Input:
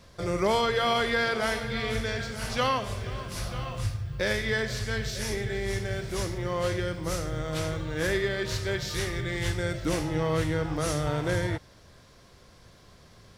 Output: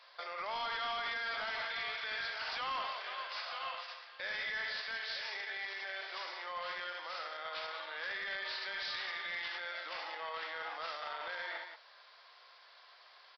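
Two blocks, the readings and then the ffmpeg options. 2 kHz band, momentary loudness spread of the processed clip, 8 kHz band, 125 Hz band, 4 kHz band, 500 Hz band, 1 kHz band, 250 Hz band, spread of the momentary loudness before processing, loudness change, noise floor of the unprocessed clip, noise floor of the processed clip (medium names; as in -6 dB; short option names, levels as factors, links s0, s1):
-5.5 dB, 14 LU, under -25 dB, under -40 dB, -5.5 dB, -18.5 dB, -7.5 dB, -31.5 dB, 8 LU, -10.0 dB, -55 dBFS, -60 dBFS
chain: -af "aecho=1:1:67.06|183.7:0.398|0.251,alimiter=level_in=1.12:limit=0.0631:level=0:latency=1:release=30,volume=0.891,highpass=f=760:w=0.5412,highpass=f=760:w=1.3066,aresample=11025,asoftclip=type=hard:threshold=0.02,aresample=44100"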